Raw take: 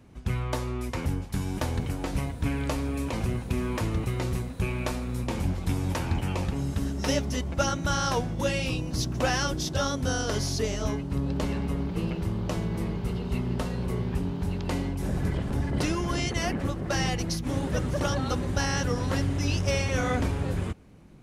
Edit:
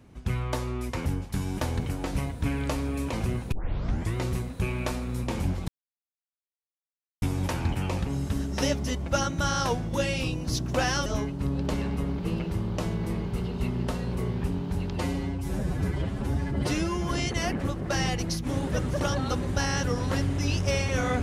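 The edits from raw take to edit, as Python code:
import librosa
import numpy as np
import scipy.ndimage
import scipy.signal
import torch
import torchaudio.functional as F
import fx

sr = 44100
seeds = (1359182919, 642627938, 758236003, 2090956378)

y = fx.edit(x, sr, fx.tape_start(start_s=3.52, length_s=0.64),
    fx.insert_silence(at_s=5.68, length_s=1.54),
    fx.cut(start_s=9.52, length_s=1.25),
    fx.stretch_span(start_s=14.67, length_s=1.42, factor=1.5), tone=tone)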